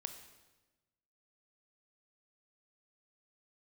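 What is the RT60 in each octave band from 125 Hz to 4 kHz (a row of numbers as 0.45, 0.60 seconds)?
1.5, 1.4, 1.2, 1.1, 1.1, 1.0 seconds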